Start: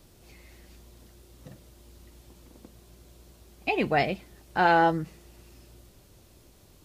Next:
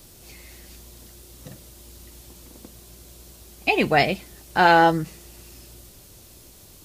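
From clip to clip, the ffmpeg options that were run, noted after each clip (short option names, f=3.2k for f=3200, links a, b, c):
-af "highshelf=f=3.9k:g=10,volume=5dB"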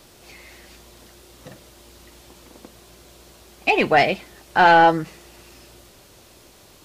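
-filter_complex "[0:a]asplit=2[a][b];[b]highpass=f=720:p=1,volume=13dB,asoftclip=type=tanh:threshold=-2.5dB[c];[a][c]amix=inputs=2:normalize=0,lowpass=f=1.9k:p=1,volume=-6dB"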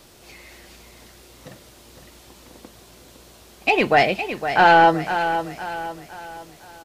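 -af "aecho=1:1:510|1020|1530|2040|2550:0.335|0.141|0.0591|0.0248|0.0104"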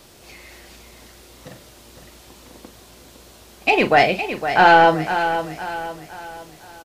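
-filter_complex "[0:a]asplit=2[a][b];[b]adelay=38,volume=-11dB[c];[a][c]amix=inputs=2:normalize=0,volume=1.5dB"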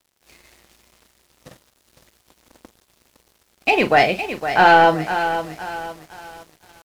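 -af "aeval=exprs='sgn(val(0))*max(abs(val(0))-0.00794,0)':c=same"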